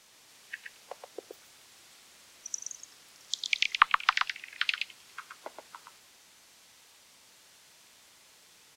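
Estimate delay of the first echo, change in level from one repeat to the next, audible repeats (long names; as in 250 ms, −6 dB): 123 ms, repeats not evenly spaced, 1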